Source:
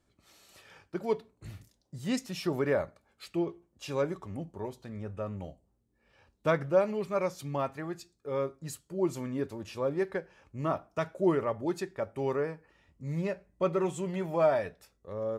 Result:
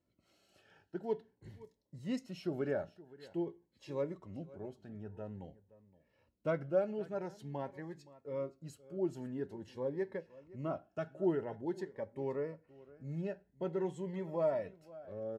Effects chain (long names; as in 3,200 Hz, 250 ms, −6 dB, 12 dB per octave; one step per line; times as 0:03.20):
low-pass filter 2,300 Hz 6 dB per octave
notch comb filter 1,200 Hz
on a send: single-tap delay 520 ms −19.5 dB
on the sum: phaser whose notches keep moving one way rising 0.48 Hz
level −5 dB